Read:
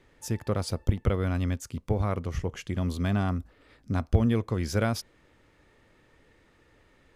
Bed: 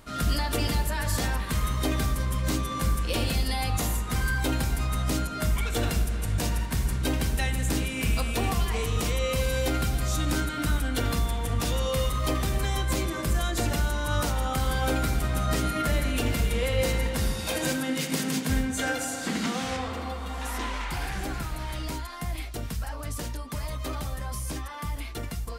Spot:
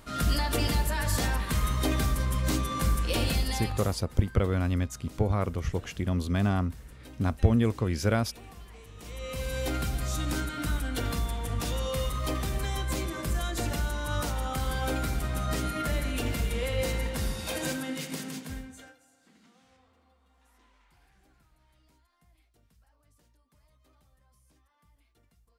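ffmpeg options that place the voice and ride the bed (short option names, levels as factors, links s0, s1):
-filter_complex "[0:a]adelay=3300,volume=1.06[s0];[1:a]volume=7.08,afade=t=out:st=3.33:d=0.68:silence=0.0891251,afade=t=in:st=8.97:d=0.74:silence=0.133352,afade=t=out:st=17.65:d=1.31:silence=0.0375837[s1];[s0][s1]amix=inputs=2:normalize=0"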